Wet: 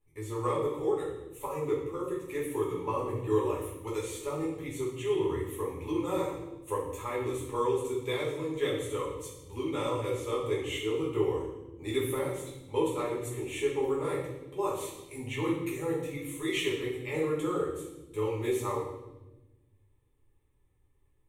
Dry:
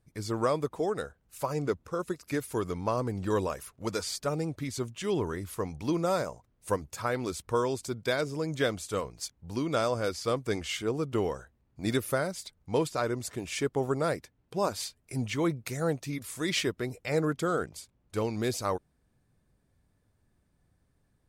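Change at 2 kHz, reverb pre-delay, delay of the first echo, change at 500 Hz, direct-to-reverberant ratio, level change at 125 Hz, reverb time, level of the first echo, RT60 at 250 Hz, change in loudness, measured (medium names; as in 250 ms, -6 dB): -3.5 dB, 5 ms, no echo, +0.5 dB, -6.5 dB, -3.5 dB, 1.1 s, no echo, 1.8 s, -1.0 dB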